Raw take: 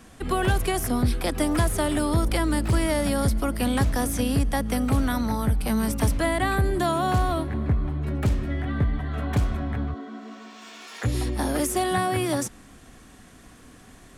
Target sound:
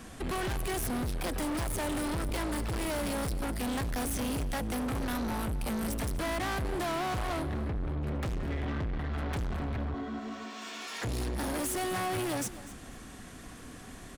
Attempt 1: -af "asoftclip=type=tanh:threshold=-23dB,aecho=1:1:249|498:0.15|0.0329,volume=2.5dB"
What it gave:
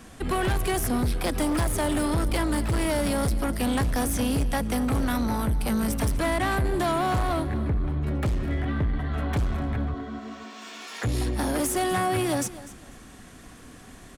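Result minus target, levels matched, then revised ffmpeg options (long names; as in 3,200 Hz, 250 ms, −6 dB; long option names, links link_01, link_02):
soft clipping: distortion −6 dB
-af "asoftclip=type=tanh:threshold=-33.5dB,aecho=1:1:249|498:0.15|0.0329,volume=2.5dB"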